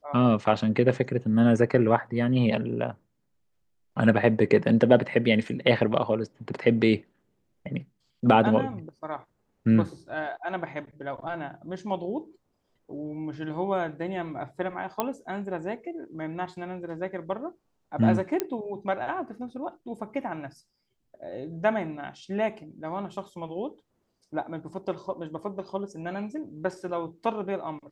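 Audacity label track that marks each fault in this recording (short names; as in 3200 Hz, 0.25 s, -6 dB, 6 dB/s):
15.000000	15.000000	pop -11 dBFS
18.400000	18.400000	pop -11 dBFS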